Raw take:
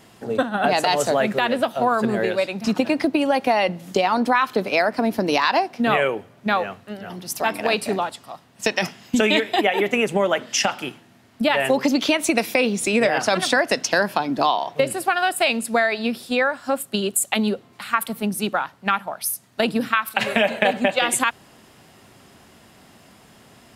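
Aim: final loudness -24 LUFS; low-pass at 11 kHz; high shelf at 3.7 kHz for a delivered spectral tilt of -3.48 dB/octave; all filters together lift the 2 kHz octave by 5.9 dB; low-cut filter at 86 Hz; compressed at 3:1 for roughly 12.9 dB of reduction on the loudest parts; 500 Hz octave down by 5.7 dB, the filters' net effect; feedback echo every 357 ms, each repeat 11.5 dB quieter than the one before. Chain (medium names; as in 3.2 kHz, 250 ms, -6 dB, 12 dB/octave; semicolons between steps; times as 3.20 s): high-pass 86 Hz; low-pass 11 kHz; peaking EQ 500 Hz -8 dB; peaking EQ 2 kHz +6.5 dB; treble shelf 3.7 kHz +5.5 dB; compression 3:1, threshold -30 dBFS; feedback delay 357 ms, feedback 27%, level -11.5 dB; trim +6 dB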